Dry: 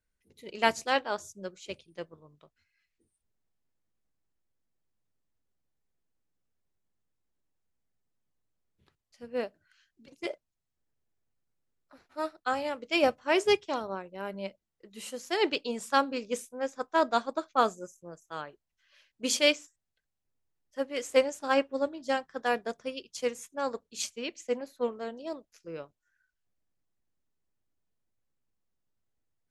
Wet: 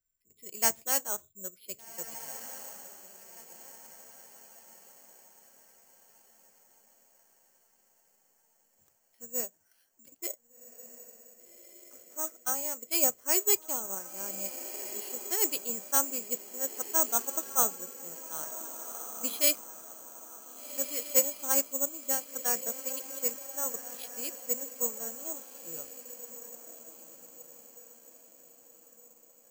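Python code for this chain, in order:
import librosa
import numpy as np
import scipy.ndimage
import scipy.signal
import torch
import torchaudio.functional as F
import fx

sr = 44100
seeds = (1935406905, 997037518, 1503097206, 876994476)

p1 = x + fx.echo_diffused(x, sr, ms=1575, feedback_pct=44, wet_db=-11.5, dry=0)
p2 = (np.kron(scipy.signal.resample_poly(p1, 1, 6), np.eye(6)[0]) * 6)[:len(p1)]
y = F.gain(torch.from_numpy(p2), -9.0).numpy()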